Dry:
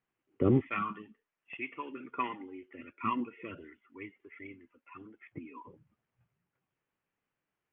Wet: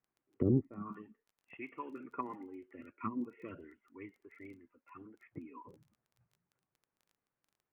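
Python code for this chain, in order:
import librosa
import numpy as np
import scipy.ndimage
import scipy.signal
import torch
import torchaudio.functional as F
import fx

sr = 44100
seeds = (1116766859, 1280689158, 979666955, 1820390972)

y = scipy.signal.sosfilt(scipy.signal.butter(2, 1700.0, 'lowpass', fs=sr, output='sos'), x)
y = fx.env_lowpass_down(y, sr, base_hz=400.0, full_db=-28.5)
y = fx.dmg_crackle(y, sr, seeds[0], per_s=14.0, level_db=-52.0)
y = y * 10.0 ** (-2.5 / 20.0)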